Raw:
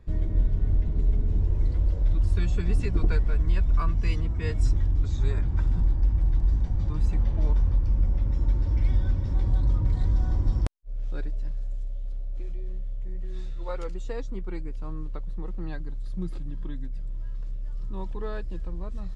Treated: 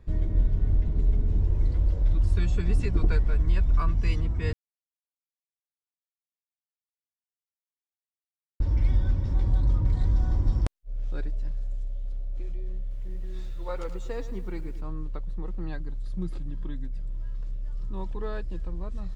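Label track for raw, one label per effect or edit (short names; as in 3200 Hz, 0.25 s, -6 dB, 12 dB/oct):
4.530000	8.600000	mute
12.800000	14.810000	lo-fi delay 0.107 s, feedback 55%, word length 9-bit, level -12.5 dB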